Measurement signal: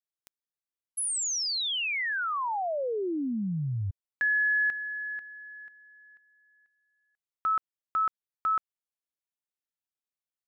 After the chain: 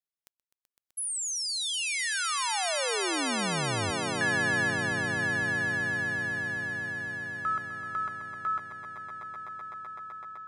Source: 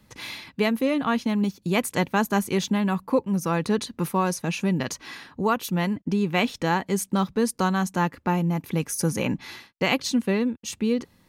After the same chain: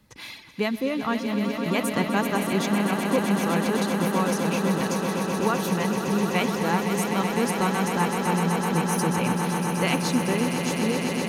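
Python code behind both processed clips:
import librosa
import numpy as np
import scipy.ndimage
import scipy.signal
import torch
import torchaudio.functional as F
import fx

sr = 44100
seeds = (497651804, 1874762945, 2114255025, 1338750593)

y = fx.dereverb_blind(x, sr, rt60_s=0.66)
y = fx.echo_swell(y, sr, ms=127, loudest=8, wet_db=-9)
y = y * librosa.db_to_amplitude(-2.5)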